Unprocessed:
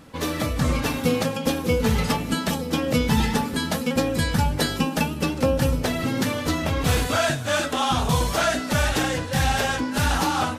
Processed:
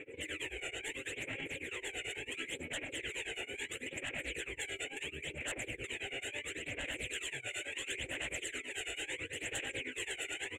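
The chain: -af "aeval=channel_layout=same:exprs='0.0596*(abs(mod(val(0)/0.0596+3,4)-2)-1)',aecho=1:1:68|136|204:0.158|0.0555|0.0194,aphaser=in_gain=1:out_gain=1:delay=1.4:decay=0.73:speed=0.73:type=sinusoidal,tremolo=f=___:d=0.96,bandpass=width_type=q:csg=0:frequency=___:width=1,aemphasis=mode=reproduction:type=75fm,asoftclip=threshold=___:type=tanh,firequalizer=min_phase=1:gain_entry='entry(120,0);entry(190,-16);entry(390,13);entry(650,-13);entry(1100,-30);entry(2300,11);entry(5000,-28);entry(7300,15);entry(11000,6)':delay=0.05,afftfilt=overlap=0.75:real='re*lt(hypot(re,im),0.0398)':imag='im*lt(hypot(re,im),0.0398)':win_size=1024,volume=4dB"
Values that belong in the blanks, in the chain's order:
9.1, 1800, -26.5dB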